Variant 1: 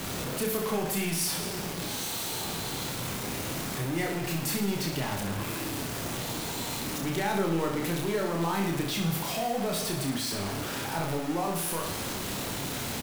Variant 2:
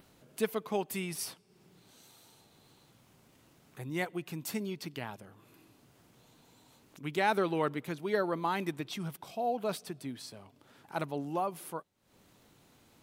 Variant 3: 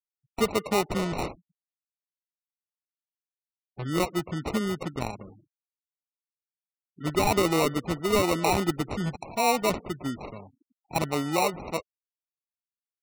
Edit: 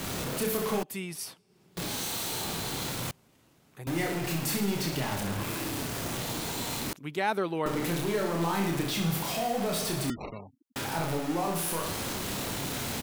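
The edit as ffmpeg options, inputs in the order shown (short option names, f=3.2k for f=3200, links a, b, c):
-filter_complex "[1:a]asplit=3[a][b][c];[0:a]asplit=5[d][e][f][g][h];[d]atrim=end=0.832[i];[a]atrim=start=0.828:end=1.772[j];[e]atrim=start=1.768:end=3.112[k];[b]atrim=start=3.108:end=3.872[l];[f]atrim=start=3.868:end=6.932[m];[c]atrim=start=6.928:end=7.662[n];[g]atrim=start=7.658:end=10.102[o];[2:a]atrim=start=10.098:end=10.762[p];[h]atrim=start=10.758[q];[i][j]acrossfade=d=0.004:c1=hsin:c2=hsin[r];[r][k]acrossfade=d=0.004:c1=hsin:c2=hsin[s];[s][l]acrossfade=d=0.004:c1=hsin:c2=hsin[t];[t][m]acrossfade=d=0.004:c1=hsin:c2=hsin[u];[u][n]acrossfade=d=0.004:c1=hsin:c2=hsin[v];[v][o]acrossfade=d=0.004:c1=hsin:c2=hsin[w];[w][p]acrossfade=d=0.004:c1=hsin:c2=hsin[x];[x][q]acrossfade=d=0.004:c1=hsin:c2=hsin"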